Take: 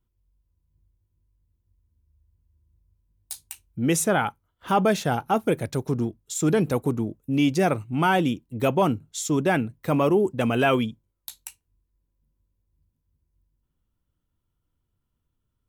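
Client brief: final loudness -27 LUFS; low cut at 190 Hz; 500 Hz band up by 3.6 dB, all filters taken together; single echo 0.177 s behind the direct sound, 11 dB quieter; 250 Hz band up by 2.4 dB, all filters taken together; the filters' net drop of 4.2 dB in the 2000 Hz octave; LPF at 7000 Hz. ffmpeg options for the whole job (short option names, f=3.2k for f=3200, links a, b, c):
-af "highpass=190,lowpass=7k,equalizer=f=250:t=o:g=3.5,equalizer=f=500:t=o:g=4,equalizer=f=2k:t=o:g=-6.5,aecho=1:1:177:0.282,volume=-5dB"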